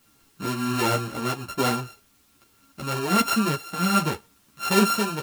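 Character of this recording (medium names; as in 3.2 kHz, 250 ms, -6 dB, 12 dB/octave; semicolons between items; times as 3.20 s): a buzz of ramps at a fixed pitch in blocks of 32 samples; tremolo triangle 1.3 Hz, depth 50%; a quantiser's noise floor 10-bit, dither triangular; a shimmering, thickened sound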